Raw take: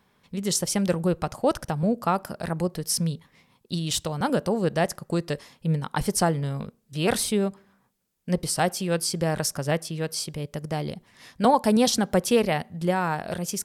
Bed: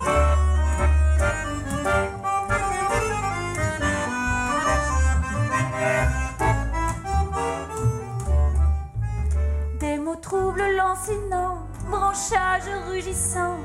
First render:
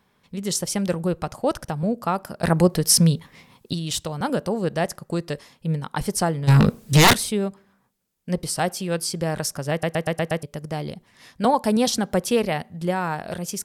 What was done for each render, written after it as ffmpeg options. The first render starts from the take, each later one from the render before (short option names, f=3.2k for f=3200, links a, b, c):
-filter_complex "[0:a]asplit=3[a][b][c];[a]afade=t=out:st=6.47:d=0.02[d];[b]aeval=exprs='0.355*sin(PI/2*7.94*val(0)/0.355)':c=same,afade=t=in:st=6.47:d=0.02,afade=t=out:st=7.12:d=0.02[e];[c]afade=t=in:st=7.12:d=0.02[f];[d][e][f]amix=inputs=3:normalize=0,asplit=9[g][h][i][j][k][l][m][n][o];[g]atrim=end=2.432[p];[h]atrim=start=2.428:end=3.732,asetpts=PTS-STARTPTS,volume=9.5dB[q];[i]atrim=start=3.728:end=9.832[r];[j]atrim=start=9.708:end=9.832[s];[k]atrim=start=9.708:end=9.832[t];[l]atrim=start=9.708:end=9.832[u];[m]atrim=start=9.708:end=9.832[v];[n]atrim=start=9.708:end=9.832[w];[o]atrim=start=10.428[x];[p][q]acrossfade=d=0.004:c1=hsin:c2=hsin[y];[y][r]acrossfade=d=0.004:c1=hsin:c2=hsin[z];[z][s]acrossfade=d=0.004:c1=hsin:c2=hsin[aa];[aa][t]acrossfade=d=0.004:c1=hsin:c2=hsin[ab];[ab][u]acrossfade=d=0.004:c1=hsin:c2=hsin[ac];[ac][v]acrossfade=d=0.004:c1=hsin:c2=hsin[ad];[ad][w]acrossfade=d=0.004:c1=hsin:c2=hsin[ae];[ae][x]acrossfade=d=0.004:c1=hsin:c2=hsin"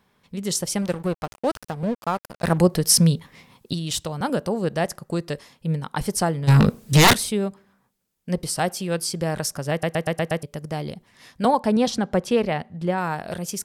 -filter_complex "[0:a]asettb=1/sr,asplit=3[a][b][c];[a]atrim=end=0.824[d];[b]atrim=start=0.82:end=2.58,asetpts=PTS-STARTPTS,afade=t=in:d=0.004:c=qsin,afade=t=out:st=1.756:d=0.004:c=qsin,aeval=exprs='sgn(val(0))*max(abs(val(0))-0.0188,0)':c=same[e];[c]atrim=start=2.576[f];[d][e]acrossfade=d=0.004:c1=hsin:c2=qsin[g];[g][f]acrossfade=d=0.004:c1=qsin:c2=hsin,asettb=1/sr,asplit=3[h][i][j];[h]atrim=end=11.574[k];[i]atrim=start=11.57:end=12.98,asetpts=PTS-STARTPTS,afade=t=in:d=0.004:c=qsin,afade=t=out:st=1.406:d=0.004:c=qsin,aemphasis=mode=reproduction:type=50fm[l];[j]atrim=start=12.976[m];[k][l]acrossfade=d=0.004:c1=hsin:c2=qsin[n];[n][m]acrossfade=d=0.004:c1=qsin:c2=hsin"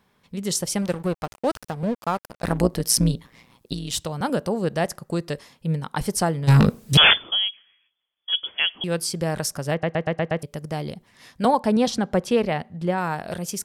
-filter_complex "[0:a]asettb=1/sr,asplit=3[a][b][c];[a]atrim=end=2.204[d];[b]atrim=start=2.2:end=3.93,asetpts=PTS-STARTPTS,afade=t=in:d=0.004:c=qsin,afade=t=out:st=1.726:d=0.004:c=qsin,tremolo=f=120:d=0.75[e];[c]atrim=start=3.926[f];[d][e]acrossfade=d=0.004:c1=hsin:c2=qsin[g];[g][f]acrossfade=d=0.004:c1=qsin:c2=hsin,asettb=1/sr,asplit=3[h][i][j];[h]atrim=end=6.974[k];[i]atrim=start=6.97:end=8.84,asetpts=PTS-STARTPTS,afade=t=in:d=0.004:c=qsin,afade=t=out:st=1.866:d=0.004:c=qsin,lowpass=f=3k:t=q:w=0.5098,lowpass=f=3k:t=q:w=0.6013,lowpass=f=3k:t=q:w=0.9,lowpass=f=3k:t=q:w=2.563,afreqshift=-3500[l];[j]atrim=start=8.836[m];[k][l]acrossfade=d=0.004:c1=hsin:c2=qsin[n];[n][m]acrossfade=d=0.004:c1=qsin:c2=hsin,asettb=1/sr,asplit=3[o][p][q];[o]atrim=end=9.744[r];[p]atrim=start=9.74:end=10.39,asetpts=PTS-STARTPTS,afade=t=in:d=0.004:c=qsin,afade=t=out:st=0.646:d=0.004:c=qsin,lowpass=2.8k[s];[q]atrim=start=10.386[t];[r][s]acrossfade=d=0.004:c1=hsin:c2=qsin[u];[u][t]acrossfade=d=0.004:c1=qsin:c2=hsin"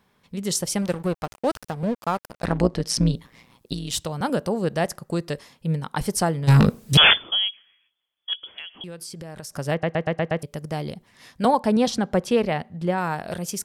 -filter_complex "[0:a]asettb=1/sr,asplit=3[a][b][c];[a]atrim=end=2.454[d];[b]atrim=start=2.45:end=3.14,asetpts=PTS-STARTPTS,afade=t=in:d=0.004:c=qsin,afade=t=out:st=0.686:d=0.004:c=qsin,lowpass=5.5k[e];[c]atrim=start=3.136[f];[d][e]acrossfade=d=0.004:c1=hsin:c2=qsin[g];[g][f]acrossfade=d=0.004:c1=qsin:c2=hsin,asettb=1/sr,asplit=3[h][i][j];[h]atrim=end=8.334[k];[i]atrim=start=8.33:end=9.55,asetpts=PTS-STARTPTS,afade=t=in:d=0.004:c=qsin,afade=t=out:st=1.216:d=0.004:c=qsin,acompressor=threshold=-33dB:ratio=10:attack=3.2:release=140:knee=1:detection=peak[l];[j]atrim=start=9.546[m];[k][l]acrossfade=d=0.004:c1=hsin:c2=qsin[n];[n][m]acrossfade=d=0.004:c1=qsin:c2=hsin"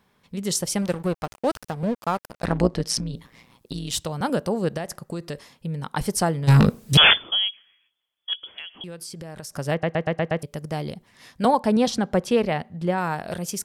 -filter_complex "[0:a]asettb=1/sr,asplit=3[a][b][c];[a]atrim=end=2.994[d];[b]atrim=start=2.99:end=3.75,asetpts=PTS-STARTPTS,afade=t=in:d=0.004:c=qsin,afade=t=out:st=0.756:d=0.004:c=qsin,acompressor=threshold=-25dB:ratio=12:attack=3.2:release=140:knee=1:detection=peak[e];[c]atrim=start=3.746[f];[d][e]acrossfade=d=0.004:c1=hsin:c2=qsin[g];[g][f]acrossfade=d=0.004:c1=qsin:c2=hsin,asettb=1/sr,asplit=3[h][i][j];[h]atrim=end=4.774[k];[i]atrim=start=4.77:end=5.84,asetpts=PTS-STARTPTS,afade=t=in:d=0.004:c=qsin,afade=t=out:st=1.066:d=0.004:c=qsin,acompressor=threshold=-26dB:ratio=6:attack=3.2:release=140:knee=1:detection=peak[l];[j]atrim=start=5.836[m];[k][l]acrossfade=d=0.004:c1=hsin:c2=qsin[n];[n][m]acrossfade=d=0.004:c1=qsin:c2=hsin"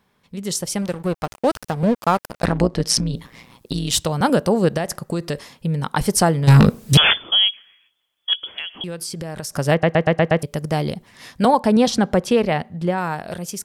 -af "alimiter=limit=-12.5dB:level=0:latency=1:release=294,dynaudnorm=f=230:g=11:m=8dB"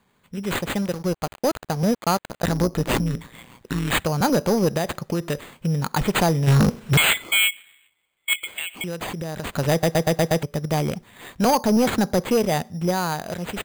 -af "acrusher=samples=8:mix=1:aa=0.000001,asoftclip=type=tanh:threshold=-12.5dB"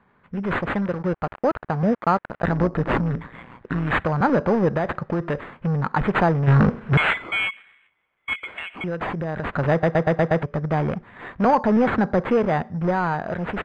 -filter_complex "[0:a]asplit=2[a][b];[b]aeval=exprs='0.0473*(abs(mod(val(0)/0.0473+3,4)-2)-1)':c=same,volume=-6.5dB[c];[a][c]amix=inputs=2:normalize=0,lowpass=f=1.6k:t=q:w=1.5"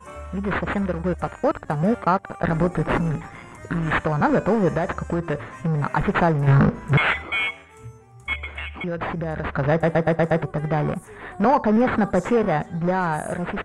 -filter_complex "[1:a]volume=-18dB[a];[0:a][a]amix=inputs=2:normalize=0"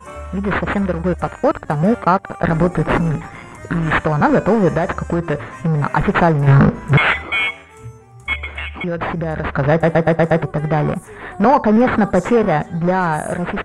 -af "volume=5.5dB"